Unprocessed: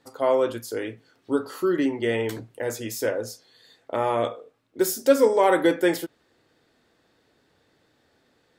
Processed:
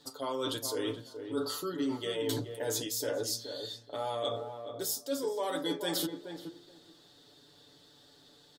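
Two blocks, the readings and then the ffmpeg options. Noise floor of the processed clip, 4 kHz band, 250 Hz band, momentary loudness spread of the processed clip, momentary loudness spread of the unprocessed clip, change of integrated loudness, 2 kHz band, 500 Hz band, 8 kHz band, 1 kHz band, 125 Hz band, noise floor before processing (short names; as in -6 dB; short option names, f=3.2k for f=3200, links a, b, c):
-60 dBFS, +1.5 dB, -10.0 dB, 8 LU, 13 LU, -10.5 dB, -13.0 dB, -12.0 dB, -1.5 dB, -12.0 dB, -6.0 dB, -66 dBFS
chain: -filter_complex "[0:a]highshelf=f=2.9k:t=q:w=3:g=6.5,aecho=1:1:6.9:0.73,bandreject=f=115.5:t=h:w=4,bandreject=f=231:t=h:w=4,bandreject=f=346.5:t=h:w=4,bandreject=f=462:t=h:w=4,bandreject=f=577.5:t=h:w=4,bandreject=f=693:t=h:w=4,bandreject=f=808.5:t=h:w=4,bandreject=f=924:t=h:w=4,bandreject=f=1.0395k:t=h:w=4,bandreject=f=1.155k:t=h:w=4,bandreject=f=1.2705k:t=h:w=4,bandreject=f=1.386k:t=h:w=4,areverse,acompressor=threshold=-31dB:ratio=10,areverse,asplit=2[a][b];[b]adelay=425,lowpass=f=1.2k:p=1,volume=-7dB,asplit=2[c][d];[d]adelay=425,lowpass=f=1.2k:p=1,volume=0.17,asplit=2[e][f];[f]adelay=425,lowpass=f=1.2k:p=1,volume=0.17[g];[a][c][e][g]amix=inputs=4:normalize=0"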